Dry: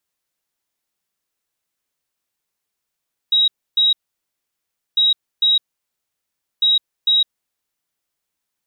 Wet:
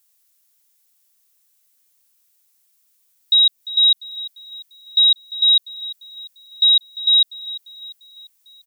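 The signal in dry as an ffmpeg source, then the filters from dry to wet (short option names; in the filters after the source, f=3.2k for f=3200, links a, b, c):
-f lavfi -i "aevalsrc='0.266*sin(2*PI*3820*t)*clip(min(mod(mod(t,1.65),0.45),0.16-mod(mod(t,1.65),0.45))/0.005,0,1)*lt(mod(t,1.65),0.9)':d=4.95:s=44100"
-af "crystalizer=i=4.5:c=0,alimiter=limit=-9dB:level=0:latency=1:release=171,aecho=1:1:347|694|1041|1388:0.158|0.0777|0.0381|0.0186"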